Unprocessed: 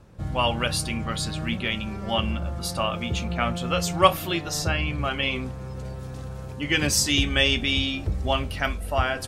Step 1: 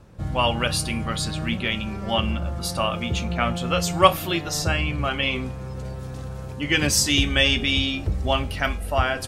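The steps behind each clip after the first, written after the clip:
hum removal 409.5 Hz, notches 35
level +2 dB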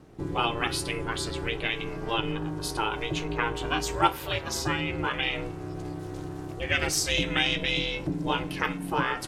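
ring modulation 230 Hz
dynamic equaliser 1,500 Hz, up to +5 dB, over −37 dBFS, Q 0.72
downward compressor 1.5 to 1, threshold −31 dBFS, peak gain reduction 8.5 dB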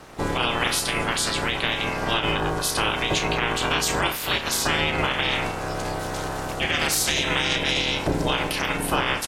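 ceiling on every frequency bin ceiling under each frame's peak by 18 dB
brickwall limiter −18.5 dBFS, peak gain reduction 11.5 dB
double-tracking delay 32 ms −11 dB
level +7.5 dB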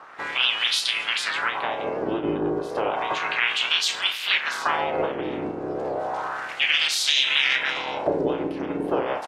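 LFO wah 0.32 Hz 320–3,600 Hz, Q 2.3
wow of a warped record 78 rpm, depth 100 cents
level +7 dB

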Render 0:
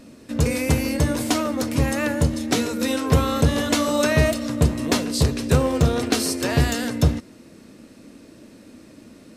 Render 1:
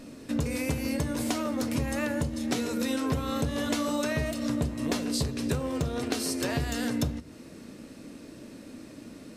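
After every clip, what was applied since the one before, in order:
downward compressor 6 to 1, threshold −27 dBFS, peak gain reduction 14.5 dB
convolution reverb RT60 0.35 s, pre-delay 7 ms, DRR 14 dB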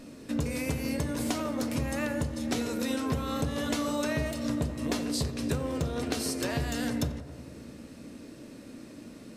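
feedback echo with a low-pass in the loop 89 ms, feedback 82%, low-pass 2,100 Hz, level −13.5 dB
level −1.5 dB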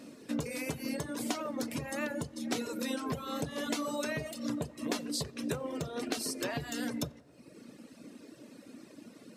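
high-pass filter 170 Hz 12 dB per octave
reverb reduction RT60 1.3 s
level −1.5 dB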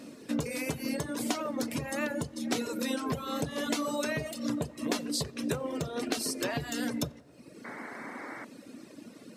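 sound drawn into the spectrogram noise, 0:07.64–0:08.45, 210–2,300 Hz −46 dBFS
level +3 dB

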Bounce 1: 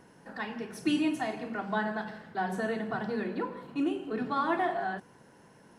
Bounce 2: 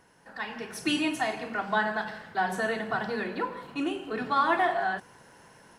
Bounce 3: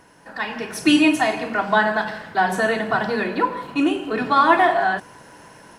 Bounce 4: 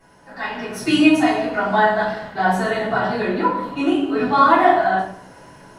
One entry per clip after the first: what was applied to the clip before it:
parametric band 230 Hz −9.5 dB 2.6 octaves; automatic gain control gain up to 7.5 dB
hollow resonant body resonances 300/620/990/2,500 Hz, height 6 dB, ringing for 90 ms; level +8.5 dB
convolution reverb RT60 0.60 s, pre-delay 3 ms, DRR −9.5 dB; level −13 dB

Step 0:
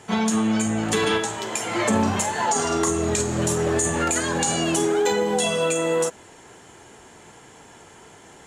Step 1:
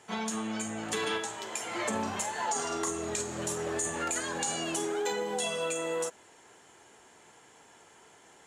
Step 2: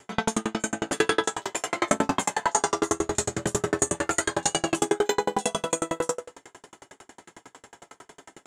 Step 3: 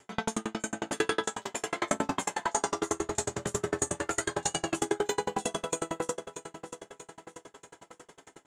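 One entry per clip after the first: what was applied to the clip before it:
low-shelf EQ 240 Hz −11 dB; level −8.5 dB
convolution reverb RT60 0.50 s, pre-delay 3 ms, DRR −7 dB; tremolo with a ramp in dB decaying 11 Hz, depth 39 dB; level +8 dB
repeating echo 635 ms, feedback 52%, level −12 dB; level −6 dB

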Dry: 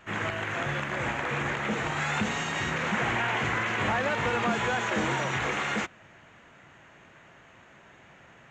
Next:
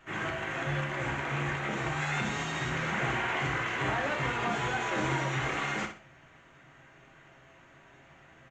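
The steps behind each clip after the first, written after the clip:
repeating echo 62 ms, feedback 28%, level −9 dB
on a send at −2.5 dB: convolution reverb RT60 0.25 s, pre-delay 3 ms
on the sum: level −5.5 dB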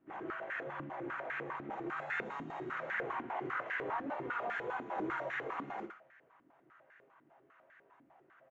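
band-pass on a step sequencer 10 Hz 280–1,700 Hz
level +1.5 dB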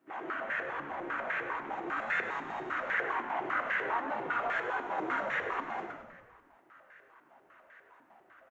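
high-pass filter 640 Hz 6 dB per octave
on a send: echo with shifted repeats 99 ms, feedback 59%, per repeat −57 Hz, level −9 dB
on the sum: level +6.5 dB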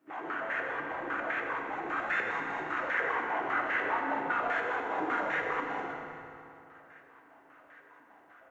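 feedback delay network reverb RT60 2.9 s, high-frequency decay 0.75×, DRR 2.5 dB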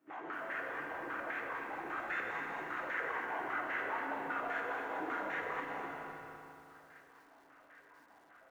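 in parallel at −3 dB: downward compressor, threshold −40 dBFS, peak gain reduction 13.5 dB
on the sum: feedback echo at a low word length 249 ms, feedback 35%, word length 9 bits, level −7.5 dB
level −9 dB

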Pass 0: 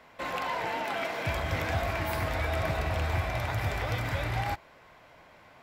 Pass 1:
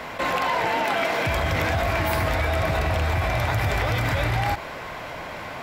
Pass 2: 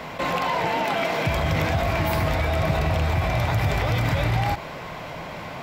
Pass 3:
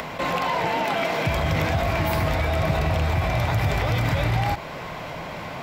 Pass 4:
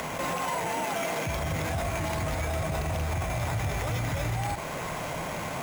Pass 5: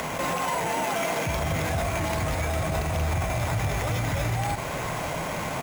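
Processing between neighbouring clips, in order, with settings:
brickwall limiter −22.5 dBFS, peak gain reduction 4 dB; envelope flattener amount 50%; level +7 dB
graphic EQ with 15 bands 160 Hz +7 dB, 1,600 Hz −4 dB, 10,000 Hz −4 dB
upward compression, threshold −29 dBFS
brickwall limiter −22 dBFS, peak gain reduction 11 dB; decimation without filtering 5×
single-tap delay 542 ms −12.5 dB; level +3 dB

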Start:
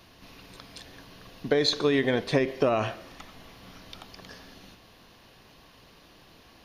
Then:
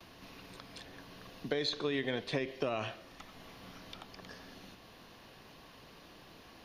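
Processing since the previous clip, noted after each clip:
dynamic equaliser 3,200 Hz, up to +6 dB, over −46 dBFS, Q 1.1
noise gate with hold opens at −48 dBFS
multiband upward and downward compressor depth 40%
level −9 dB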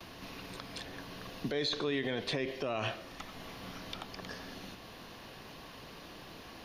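brickwall limiter −30 dBFS, peak gain reduction 11.5 dB
level +6 dB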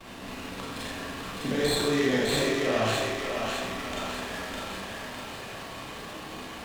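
feedback echo with a high-pass in the loop 606 ms, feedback 55%, high-pass 450 Hz, level −3 dB
four-comb reverb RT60 1 s, combs from 28 ms, DRR −6.5 dB
windowed peak hold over 5 samples
level +1.5 dB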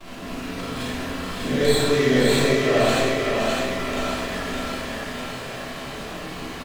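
single-tap delay 516 ms −7 dB
rectangular room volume 370 cubic metres, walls furnished, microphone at 3 metres

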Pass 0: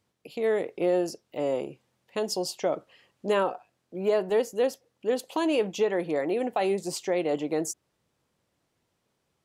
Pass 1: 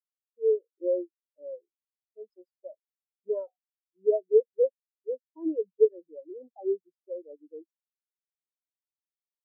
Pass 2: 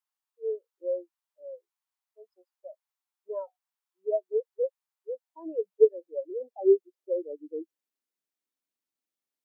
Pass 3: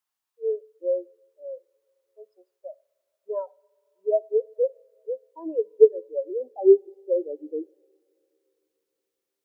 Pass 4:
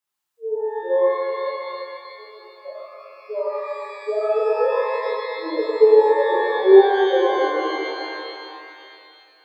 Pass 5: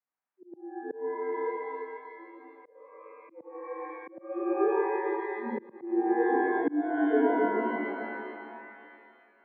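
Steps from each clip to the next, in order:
every bin expanded away from the loudest bin 4 to 1; level +3.5 dB
high-pass filter sweep 910 Hz → 250 Hz, 0:04.88–0:08.12; level +3 dB
coupled-rooms reverb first 0.49 s, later 3.3 s, from −20 dB, DRR 19.5 dB; level +5 dB
reverb with rising layers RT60 2.6 s, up +12 semitones, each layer −8 dB, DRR −8.5 dB; level −3 dB
volume swells 451 ms; single-sideband voice off tune −91 Hz 250–2,300 Hz; level −6 dB

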